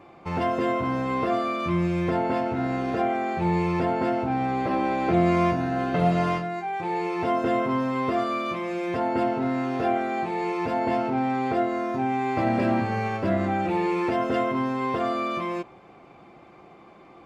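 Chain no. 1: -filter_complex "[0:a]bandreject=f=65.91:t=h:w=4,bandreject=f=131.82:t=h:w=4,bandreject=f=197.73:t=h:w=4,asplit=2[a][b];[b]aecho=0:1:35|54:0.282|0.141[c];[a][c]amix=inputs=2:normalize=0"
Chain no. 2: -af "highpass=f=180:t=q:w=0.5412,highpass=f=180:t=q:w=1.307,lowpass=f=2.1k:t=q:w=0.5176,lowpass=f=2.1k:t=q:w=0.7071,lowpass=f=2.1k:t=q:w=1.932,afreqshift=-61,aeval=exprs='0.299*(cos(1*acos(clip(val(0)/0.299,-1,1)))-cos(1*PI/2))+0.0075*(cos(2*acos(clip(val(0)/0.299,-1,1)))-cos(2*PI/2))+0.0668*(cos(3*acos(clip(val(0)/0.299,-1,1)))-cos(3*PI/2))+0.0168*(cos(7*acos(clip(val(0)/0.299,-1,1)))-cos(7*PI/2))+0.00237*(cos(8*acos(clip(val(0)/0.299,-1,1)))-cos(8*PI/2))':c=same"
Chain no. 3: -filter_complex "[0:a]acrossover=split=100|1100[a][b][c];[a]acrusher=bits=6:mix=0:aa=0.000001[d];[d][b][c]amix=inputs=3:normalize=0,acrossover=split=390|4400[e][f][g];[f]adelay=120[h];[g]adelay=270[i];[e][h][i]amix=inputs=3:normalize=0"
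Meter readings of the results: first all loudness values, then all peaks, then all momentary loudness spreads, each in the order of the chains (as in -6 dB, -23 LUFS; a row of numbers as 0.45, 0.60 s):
-25.5, -35.5, -26.5 LUFS; -10.0, -10.5, -11.5 dBFS; 5, 12, 5 LU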